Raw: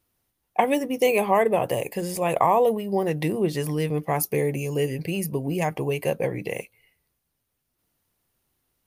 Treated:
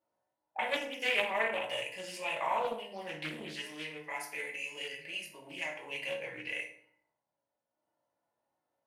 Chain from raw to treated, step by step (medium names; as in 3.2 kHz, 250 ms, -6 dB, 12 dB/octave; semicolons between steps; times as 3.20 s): peaking EQ 8.1 kHz +7 dB 1.4 oct; harmonic-percussive split percussive -7 dB; 3.50–5.91 s: peaking EQ 110 Hz -10.5 dB 2.9 oct; auto-wah 720–2600 Hz, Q 2.2, up, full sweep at -29 dBFS; reverberation RT60 0.60 s, pre-delay 3 ms, DRR -4 dB; loudspeaker Doppler distortion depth 0.29 ms